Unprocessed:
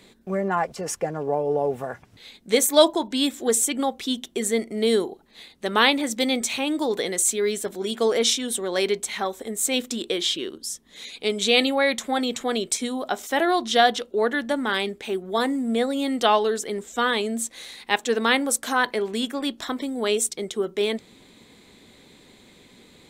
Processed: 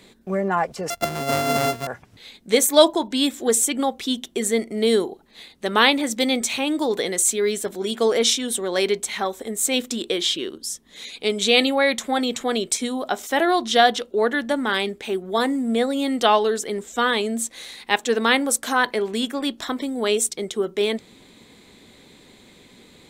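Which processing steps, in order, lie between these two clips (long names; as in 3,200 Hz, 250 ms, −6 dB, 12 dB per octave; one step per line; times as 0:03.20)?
0:00.90–0:01.87: samples sorted by size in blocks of 64 samples
level +2 dB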